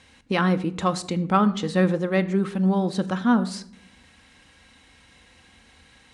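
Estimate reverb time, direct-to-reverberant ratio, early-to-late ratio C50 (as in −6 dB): 0.60 s, 8.5 dB, 16.5 dB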